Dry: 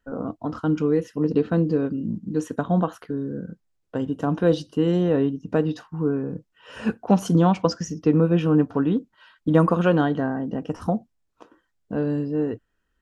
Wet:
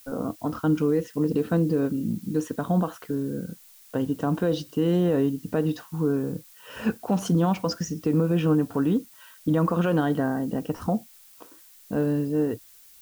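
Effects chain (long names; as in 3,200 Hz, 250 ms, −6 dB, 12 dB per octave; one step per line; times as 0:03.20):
brickwall limiter −14 dBFS, peak gain reduction 8.5 dB
background noise blue −52 dBFS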